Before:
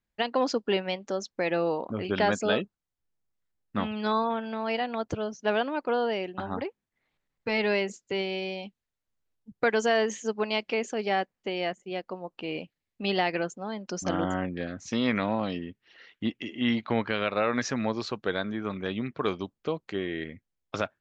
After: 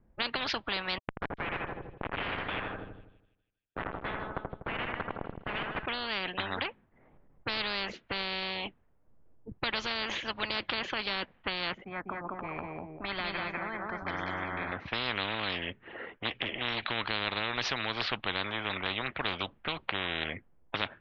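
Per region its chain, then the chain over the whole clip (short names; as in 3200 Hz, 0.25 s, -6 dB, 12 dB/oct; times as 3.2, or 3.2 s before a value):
0.98–5.86 steep high-pass 1300 Hz 96 dB/oct + Schmitt trigger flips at -33.5 dBFS + split-band echo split 2900 Hz, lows 82 ms, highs 0.151 s, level -7 dB
11.84–14.72 LPF 1900 Hz 6 dB/oct + fixed phaser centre 1200 Hz, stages 4 + feedback echo 0.197 s, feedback 25%, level -4.5 dB
whole clip: low-pass opened by the level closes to 700 Hz, open at -25 dBFS; steep low-pass 3500 Hz 36 dB/oct; spectral compressor 10:1; gain +2.5 dB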